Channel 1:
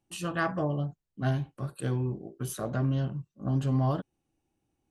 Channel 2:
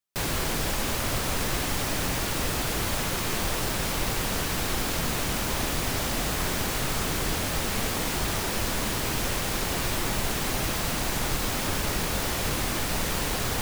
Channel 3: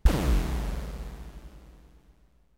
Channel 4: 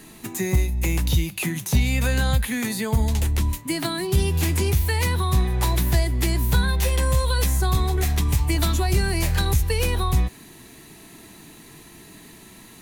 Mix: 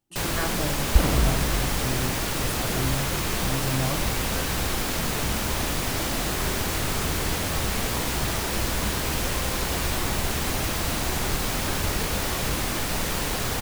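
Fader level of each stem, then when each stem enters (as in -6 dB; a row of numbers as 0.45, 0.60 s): -2.5, +1.0, +2.5, -14.0 dB; 0.00, 0.00, 0.90, 2.30 s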